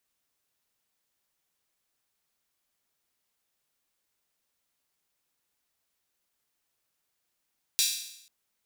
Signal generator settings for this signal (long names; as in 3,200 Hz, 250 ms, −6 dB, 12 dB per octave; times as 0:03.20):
open synth hi-hat length 0.49 s, high-pass 3,800 Hz, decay 0.77 s